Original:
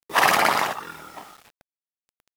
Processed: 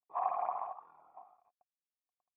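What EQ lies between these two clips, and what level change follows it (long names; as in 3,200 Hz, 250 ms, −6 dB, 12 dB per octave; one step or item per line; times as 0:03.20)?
dynamic equaliser 240 Hz, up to −5 dB, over −40 dBFS, Q 0.71
formant resonators in series a
−5.5 dB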